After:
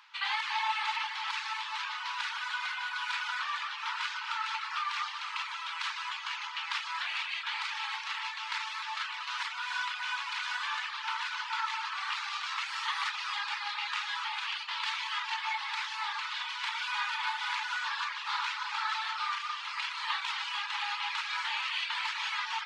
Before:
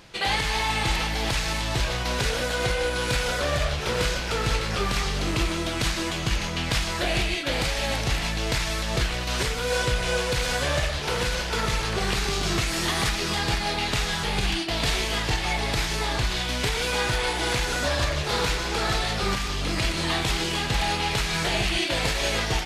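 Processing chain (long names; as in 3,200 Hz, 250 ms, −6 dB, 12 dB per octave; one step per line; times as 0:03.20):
head-to-tape spacing loss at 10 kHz 26 dB
convolution reverb RT60 0.35 s, pre-delay 224 ms, DRR 9 dB
reverb reduction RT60 0.52 s
Chebyshev high-pass with heavy ripple 870 Hz, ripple 3 dB
level +2.5 dB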